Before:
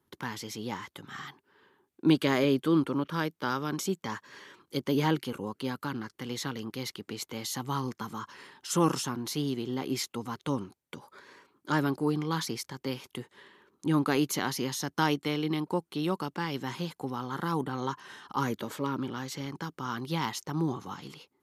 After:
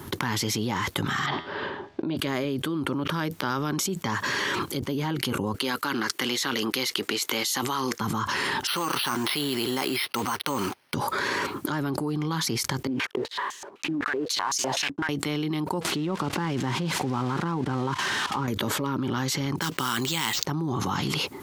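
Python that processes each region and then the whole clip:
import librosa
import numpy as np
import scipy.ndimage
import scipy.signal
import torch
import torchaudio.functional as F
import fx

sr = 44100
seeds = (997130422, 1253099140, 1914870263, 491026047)

y = fx.chain(x, sr, fx.lowpass(hz=5000.0, slope=24),
    fx.peak_eq(hz=620.0, db=13.5, octaves=0.41),
    fx.comb_fb(f0_hz=82.0, decay_s=0.57, harmonics='all', damping=0.0, mix_pct=50), at=(1.26, 2.17))
y = fx.chain(y, sr, fx.highpass(hz=440.0, slope=12),
    fx.peak_eq(hz=740.0, db=-6.0, octaves=1.6), at=(5.56, 8.0))
y = fx.chain(y, sr, fx.block_float(bits=5),
    fx.highpass(hz=1400.0, slope=6),
    fx.resample_bad(factor=6, down='filtered', up='hold'), at=(8.67, 10.94))
y = fx.chain(y, sr, fx.block_float(bits=3),
    fx.notch(hz=1300.0, q=19.0),
    fx.filter_held_bandpass(hz=7.9, low_hz=270.0, high_hz=6500.0), at=(12.87, 15.09))
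y = fx.chain(y, sr, fx.crossing_spikes(level_db=-26.5),
    fx.level_steps(step_db=19),
    fx.spacing_loss(db_at_10k=27), at=(15.81, 18.48))
y = fx.chain(y, sr, fx.weighting(curve='D'),
    fx.sample_hold(seeds[0], rate_hz=11000.0, jitter_pct=0), at=(19.61, 20.44))
y = fx.peak_eq(y, sr, hz=100.0, db=4.5, octaves=0.78)
y = fx.notch(y, sr, hz=480.0, q=12.0)
y = fx.env_flatten(y, sr, amount_pct=100)
y = y * librosa.db_to_amplitude(-6.0)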